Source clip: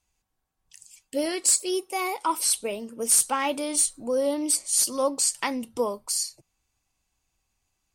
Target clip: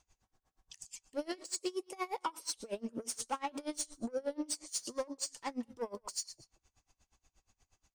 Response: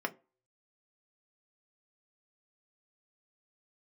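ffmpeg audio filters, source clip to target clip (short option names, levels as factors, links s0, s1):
-filter_complex "[0:a]aemphasis=mode=reproduction:type=50fm,acrossover=split=6600[s0][s1];[s1]acompressor=threshold=0.0158:ratio=4:attack=1:release=60[s2];[s0][s2]amix=inputs=2:normalize=0,equalizer=f=160:t=o:w=0.67:g=-4,equalizer=f=2500:t=o:w=0.67:g=-3,equalizer=f=6300:t=o:w=0.67:g=7,acompressor=threshold=0.01:ratio=5,asoftclip=type=tanh:threshold=0.015,asplit=2[s3][s4];[s4]aecho=0:1:180:0.1[s5];[s3][s5]amix=inputs=2:normalize=0,aeval=exprs='val(0)*pow(10,-26*(0.5-0.5*cos(2*PI*8.4*n/s))/20)':c=same,volume=3.16"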